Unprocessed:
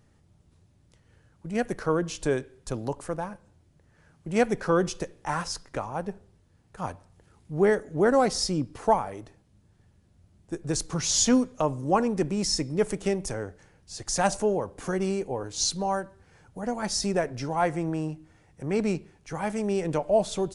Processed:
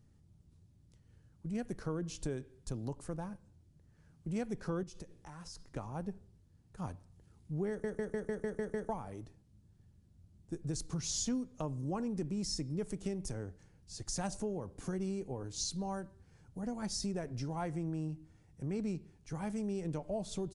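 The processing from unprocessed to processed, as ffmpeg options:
-filter_complex "[0:a]asettb=1/sr,asplit=3[s0][s1][s2];[s0]atrim=end=4.834[s3];[s1]atrim=start=4.83:end=5.76,asetpts=PTS-STARTPTS,afade=t=in:d=0.004:c=qsin,afade=t=out:st=0.926:d=0.004:c=qsin,acompressor=threshold=0.0112:ratio=4:attack=3.2:release=140:knee=1:detection=peak[s4];[s2]atrim=start=5.756[s5];[s3][s4]acrossfade=d=0.004:c1=hsin:c2=qsin[s6];[s6][s5]acrossfade=d=0.004:c1=qsin:c2=hsin,asplit=9[s7][s8][s9][s10][s11][s12][s13][s14][s15];[s7]atrim=end=7.842[s16];[s8]atrim=start=7.688:end=7.842[s17];[s9]atrim=start=7.688:end=7.842[s18];[s10]atrim=start=7.688:end=7.842[s19];[s11]atrim=start=7.688:end=7.842[s20];[s12]atrim=start=7.688:end=7.842[s21];[s13]atrim=start=7.688:end=7.842[s22];[s14]atrim=start=7.688:end=7.842[s23];[s15]atrim=start=8.888[s24];[s16][s17]acrossfade=d=0.004:c1=hsin:c2=hsin[s25];[s25][s18]acrossfade=d=0.004:c1=hsin:c2=hsin[s26];[s26][s19]acrossfade=d=0.004:c1=hsin:c2=hsin[s27];[s27][s20]acrossfade=d=0.004:c1=hsin:c2=hsin[s28];[s28][s21]acrossfade=d=0.004:c1=hsin:c2=hsin[s29];[s29][s22]acrossfade=d=0.004:c1=hsin:c2=hsin[s30];[s30][s23]acrossfade=d=0.004:c1=hsin:c2=hsin[s31];[s31][s24]acrossfade=d=0.004:c1=hsin:c2=hsin,firequalizer=gain_entry='entry(150,0);entry(550,-10);entry(1900,-11);entry(4500,-6)':delay=0.05:min_phase=1,acompressor=threshold=0.0224:ratio=3,volume=0.794"

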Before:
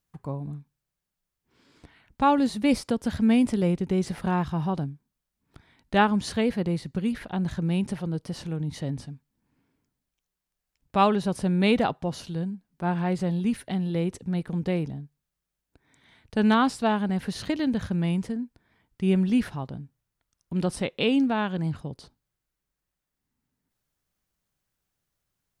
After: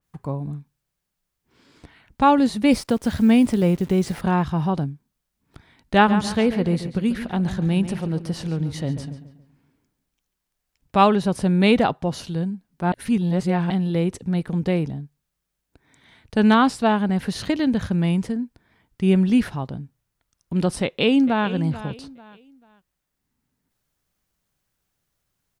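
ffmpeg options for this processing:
-filter_complex "[0:a]asettb=1/sr,asplit=3[s0][s1][s2];[s0]atrim=end=2.724[s3];[s1]atrim=start=2.72:end=4.21,asetpts=PTS-STARTPTS,afade=t=in:d=0.004:c=qsin,afade=t=out:st=1.486:d=0.004:c=qsin,acrusher=bits=9:dc=4:mix=0:aa=0.000001[s4];[s2]atrim=start=4.206[s5];[s3][s4]acrossfade=d=0.004:c1=hsin:c2=qsin[s6];[s6][s5]acrossfade=d=0.004:c1=qsin:c2=hsin,asplit=3[s7][s8][s9];[s7]afade=t=out:st=6.03:d=0.02[s10];[s8]asplit=2[s11][s12];[s12]adelay=140,lowpass=f=4100:p=1,volume=0.282,asplit=2[s13][s14];[s14]adelay=140,lowpass=f=4100:p=1,volume=0.4,asplit=2[s15][s16];[s16]adelay=140,lowpass=f=4100:p=1,volume=0.4,asplit=2[s17][s18];[s18]adelay=140,lowpass=f=4100:p=1,volume=0.4[s19];[s11][s13][s15][s17][s19]amix=inputs=5:normalize=0,afade=t=in:st=6.03:d=0.02,afade=t=out:st=10.98:d=0.02[s20];[s9]afade=t=in:st=10.98:d=0.02[s21];[s10][s20][s21]amix=inputs=3:normalize=0,asplit=2[s22][s23];[s23]afade=t=in:st=20.83:d=0.01,afade=t=out:st=21.49:d=0.01,aecho=0:1:440|880|1320:0.188365|0.0565095|0.0169528[s24];[s22][s24]amix=inputs=2:normalize=0,asplit=3[s25][s26][s27];[s25]atrim=end=12.922[s28];[s26]atrim=start=12.918:end=13.702,asetpts=PTS-STARTPTS,areverse[s29];[s27]atrim=start=13.698[s30];[s28][s29]acrossfade=d=0.004:c1=hsin:c2=hsin[s31];[s31][s30]acrossfade=d=0.004:c1=hsin:c2=hsin,adynamicequalizer=threshold=0.0112:dfrequency=3100:dqfactor=0.7:tfrequency=3100:tqfactor=0.7:attack=5:release=100:ratio=0.375:range=1.5:mode=cutabove:tftype=highshelf,volume=1.78"

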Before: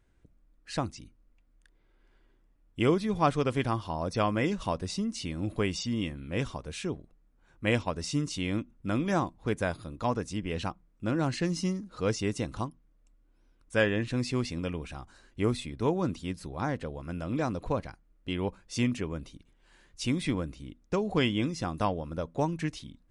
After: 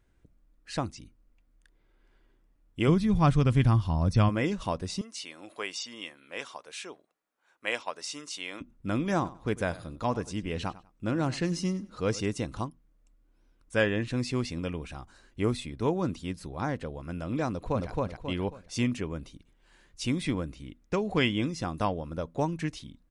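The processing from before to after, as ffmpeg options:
-filter_complex "[0:a]asplit=3[s0][s1][s2];[s0]afade=t=out:st=2.87:d=0.02[s3];[s1]asubboost=boost=6.5:cutoff=180,afade=t=in:st=2.87:d=0.02,afade=t=out:st=4.28:d=0.02[s4];[s2]afade=t=in:st=4.28:d=0.02[s5];[s3][s4][s5]amix=inputs=3:normalize=0,asettb=1/sr,asplit=3[s6][s7][s8];[s6]atrim=end=5.014[s9];[s7]atrim=start=5.01:end=8.61,asetpts=PTS-STARTPTS,afade=t=in:d=0.004:c=qsin,afade=t=out:st=3.596:d=0.004:c=qsin,highpass=660[s10];[s8]atrim=start=8.606[s11];[s9][s10]acrossfade=d=0.004:c1=hsin:c2=qsin[s12];[s12][s11]acrossfade=d=0.004:c1=qsin:c2=hsin,asettb=1/sr,asplit=3[s13][s14][s15];[s13]atrim=end=9.154[s16];[s14]atrim=start=9.15:end=12.26,asetpts=PTS-STARTPTS,afade=t=in:d=0.004:c=qsin,afade=t=out:st=3.106:d=0.004:c=qsin,aecho=1:1:97|194:0.126|0.0302,atrim=end_sample=137151[s17];[s15]atrim=start=12.256[s18];[s16][s17]acrossfade=d=0.004:c1=hsin:c2=qsin[s19];[s19][s18]acrossfade=d=0.004:c1=qsin:c2=hsin,asplit=2[s20][s21];[s21]afade=t=in:st=17.48:d=0.01,afade=t=out:st=17.89:d=0.01,aecho=0:1:270|540|810|1080|1350:0.944061|0.330421|0.115647|0.0404766|0.0141668[s22];[s20][s22]amix=inputs=2:normalize=0,asettb=1/sr,asplit=3[s23][s24][s25];[s23]atrim=end=20.554[s26];[s24]atrim=start=20.55:end=21.36,asetpts=PTS-STARTPTS,afade=t=in:d=0.004:c=qsin,afade=t=out:st=0.806:d=0.004:c=qsin,equalizer=f=2100:w=1.5:g=4.5[s27];[s25]atrim=start=21.356[s28];[s26][s27]acrossfade=d=0.004:c1=hsin:c2=qsin[s29];[s29][s28]acrossfade=d=0.004:c1=qsin:c2=hsin"

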